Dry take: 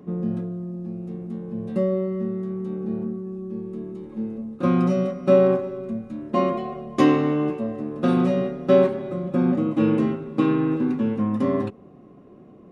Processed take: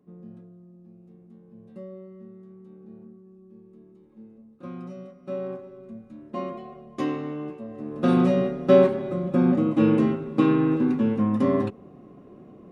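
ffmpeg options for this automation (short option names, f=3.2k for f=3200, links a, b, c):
-af "volume=0.5dB,afade=t=in:st=5.18:d=0.97:silence=0.421697,afade=t=in:st=7.68:d=0.46:silence=0.281838"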